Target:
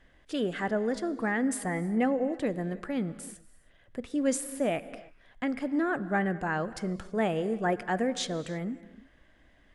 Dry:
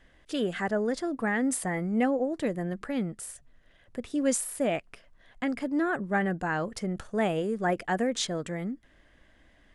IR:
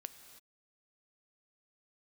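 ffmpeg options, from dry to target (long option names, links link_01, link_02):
-filter_complex "[0:a]asplit=2[link_01][link_02];[1:a]atrim=start_sample=2205,highshelf=frequency=5400:gain=-9[link_03];[link_02][link_03]afir=irnorm=-1:irlink=0,volume=7dB[link_04];[link_01][link_04]amix=inputs=2:normalize=0,volume=-8dB"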